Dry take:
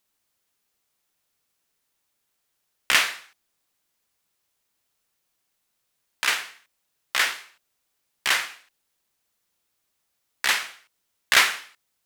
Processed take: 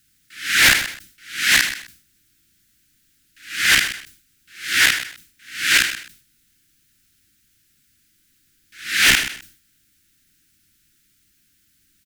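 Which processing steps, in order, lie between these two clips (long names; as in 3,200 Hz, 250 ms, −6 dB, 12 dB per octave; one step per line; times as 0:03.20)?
played backwards from end to start
elliptic band-stop filter 330–1,500 Hz, stop band 40 dB
low-shelf EQ 300 Hz +10.5 dB
in parallel at −3 dB: downward compressor, threshold −33 dBFS, peak gain reduction 19 dB
on the sum: hard clipping −17.5 dBFS, distortion −8 dB
repeating echo 128 ms, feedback 17%, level −12 dB
level that may fall only so fast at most 110 dB per second
level +8.5 dB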